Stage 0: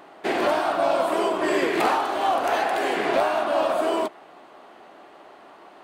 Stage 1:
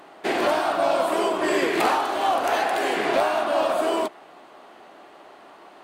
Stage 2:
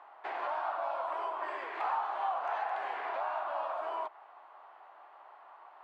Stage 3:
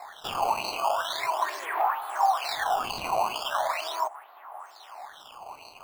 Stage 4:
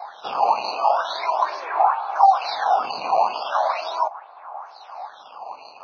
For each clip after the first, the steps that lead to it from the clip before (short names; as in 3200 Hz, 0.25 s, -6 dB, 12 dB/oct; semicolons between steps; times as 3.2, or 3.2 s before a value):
bell 12000 Hz +3.5 dB 2.7 oct
compressor 2:1, threshold -27 dBFS, peak gain reduction 6.5 dB; ladder band-pass 1100 Hz, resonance 45%; gain +3 dB
compressor 2.5:1, threshold -36 dBFS, peak gain reduction 5.5 dB; decimation with a swept rate 14×, swing 160% 0.4 Hz; LFO bell 2.2 Hz 710–4300 Hz +15 dB; gain +3 dB
speaker cabinet 270–4700 Hz, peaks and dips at 360 Hz -4 dB, 520 Hz +3 dB, 800 Hz +4 dB, 1900 Hz -10 dB, 3100 Hz -10 dB; gain +5 dB; Vorbis 16 kbps 16000 Hz